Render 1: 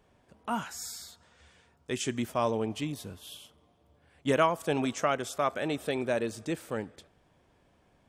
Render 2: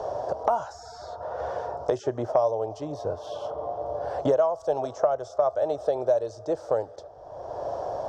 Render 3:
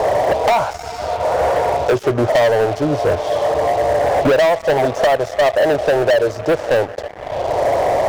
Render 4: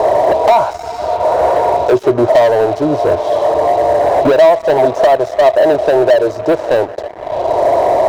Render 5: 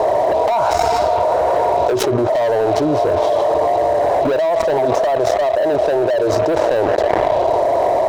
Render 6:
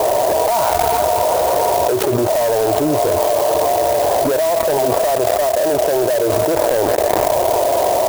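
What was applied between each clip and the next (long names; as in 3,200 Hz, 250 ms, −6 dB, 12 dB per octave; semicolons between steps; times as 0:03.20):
drawn EQ curve 110 Hz 0 dB, 210 Hz −19 dB, 620 Hz +14 dB, 1,500 Hz −7 dB, 2,300 Hz −24 dB, 5,600 Hz −1 dB, 11,000 Hz −30 dB; multiband upward and downward compressor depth 100%
high-shelf EQ 3,000 Hz −9 dB; leveller curve on the samples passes 5
hollow resonant body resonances 360/650/940/3,900 Hz, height 9 dB, ringing for 20 ms; level −2 dB
envelope flattener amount 100%; level −11 dB
converter with an unsteady clock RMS 0.059 ms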